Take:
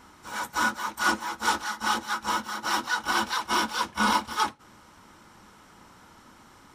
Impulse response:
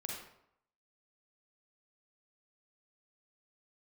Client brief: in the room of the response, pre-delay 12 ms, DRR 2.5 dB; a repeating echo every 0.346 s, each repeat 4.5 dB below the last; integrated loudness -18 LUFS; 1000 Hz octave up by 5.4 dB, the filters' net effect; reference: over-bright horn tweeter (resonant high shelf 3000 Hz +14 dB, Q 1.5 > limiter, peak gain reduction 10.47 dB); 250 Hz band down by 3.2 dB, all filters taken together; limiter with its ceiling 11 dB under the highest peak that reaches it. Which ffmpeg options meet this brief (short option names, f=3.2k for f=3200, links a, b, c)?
-filter_complex "[0:a]equalizer=f=250:t=o:g=-4.5,equalizer=f=1k:t=o:g=8,alimiter=limit=-16dB:level=0:latency=1,aecho=1:1:346|692|1038|1384|1730|2076|2422|2768|3114:0.596|0.357|0.214|0.129|0.0772|0.0463|0.0278|0.0167|0.01,asplit=2[a][b];[1:a]atrim=start_sample=2205,adelay=12[c];[b][c]afir=irnorm=-1:irlink=0,volume=-2dB[d];[a][d]amix=inputs=2:normalize=0,highshelf=f=3k:t=q:w=1.5:g=14,volume=6.5dB,alimiter=limit=-10dB:level=0:latency=1"